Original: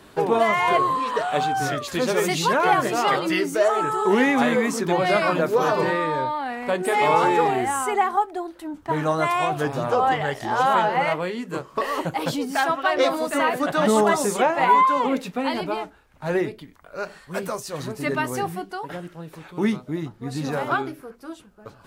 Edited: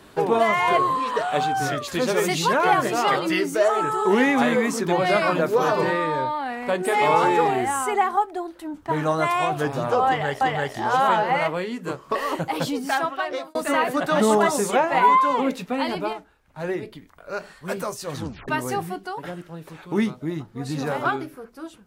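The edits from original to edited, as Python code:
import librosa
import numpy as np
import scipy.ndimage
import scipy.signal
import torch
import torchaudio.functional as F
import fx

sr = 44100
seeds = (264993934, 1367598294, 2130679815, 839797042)

y = fx.edit(x, sr, fx.repeat(start_s=10.07, length_s=0.34, count=2),
    fx.fade_out_span(start_s=12.31, length_s=0.9, curve='qsin'),
    fx.clip_gain(start_s=15.79, length_s=0.7, db=-4.5),
    fx.tape_stop(start_s=17.83, length_s=0.31), tone=tone)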